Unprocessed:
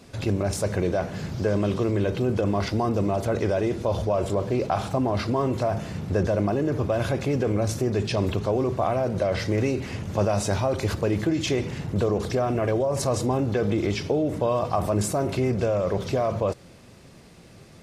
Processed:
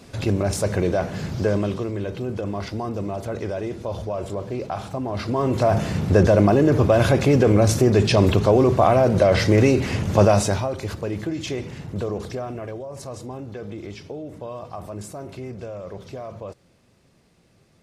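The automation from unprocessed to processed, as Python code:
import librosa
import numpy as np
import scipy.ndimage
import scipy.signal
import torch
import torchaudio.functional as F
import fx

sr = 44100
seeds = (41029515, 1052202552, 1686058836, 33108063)

y = fx.gain(x, sr, db=fx.line((1.49, 3.0), (1.9, -4.0), (5.04, -4.0), (5.77, 8.0), (10.31, 8.0), (10.75, -3.5), (12.2, -3.5), (12.82, -10.5)))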